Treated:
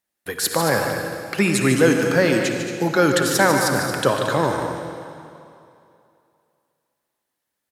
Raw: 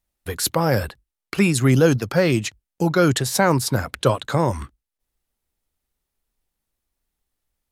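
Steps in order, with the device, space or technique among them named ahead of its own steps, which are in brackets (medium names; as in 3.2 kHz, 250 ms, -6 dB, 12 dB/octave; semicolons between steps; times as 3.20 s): stadium PA (high-pass 190 Hz 12 dB/octave; peaking EQ 1.7 kHz +6.5 dB 0.31 oct; loudspeakers at several distances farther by 51 m -9 dB, 77 m -11 dB; reverberation RT60 2.6 s, pre-delay 51 ms, DRR 5 dB)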